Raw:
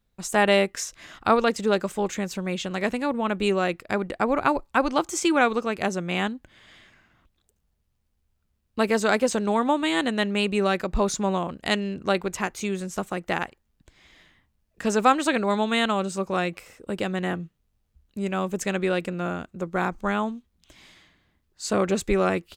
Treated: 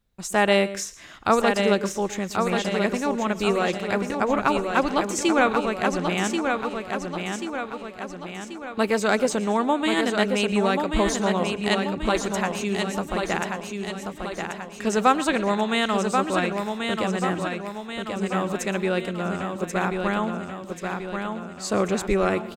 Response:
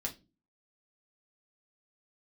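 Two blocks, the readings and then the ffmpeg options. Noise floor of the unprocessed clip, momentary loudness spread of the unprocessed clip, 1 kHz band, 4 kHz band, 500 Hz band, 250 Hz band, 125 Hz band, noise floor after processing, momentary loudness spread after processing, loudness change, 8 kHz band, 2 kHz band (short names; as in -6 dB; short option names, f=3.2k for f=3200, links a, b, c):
-72 dBFS, 9 LU, +1.5 dB, +1.5 dB, +1.5 dB, +1.5 dB, +1.5 dB, -39 dBFS, 12 LU, +0.5 dB, +1.5 dB, +1.5 dB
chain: -filter_complex "[0:a]aecho=1:1:1085|2170|3255|4340|5425|6510|7595:0.562|0.292|0.152|0.0791|0.0411|0.0214|0.0111,asplit=2[a][b];[1:a]atrim=start_sample=2205,asetrate=70560,aresample=44100,adelay=115[c];[b][c]afir=irnorm=-1:irlink=0,volume=-13.5dB[d];[a][d]amix=inputs=2:normalize=0"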